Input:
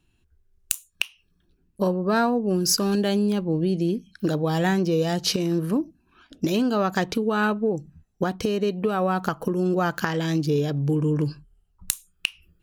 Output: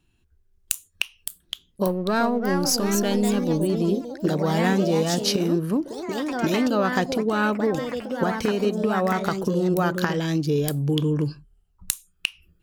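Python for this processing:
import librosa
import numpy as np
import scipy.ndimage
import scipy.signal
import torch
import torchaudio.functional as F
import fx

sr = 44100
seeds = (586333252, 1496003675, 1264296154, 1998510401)

y = fx.halfwave_gain(x, sr, db=-3.0, at=(1.87, 3.22))
y = fx.echo_pitch(y, sr, ms=677, semitones=3, count=3, db_per_echo=-6.0)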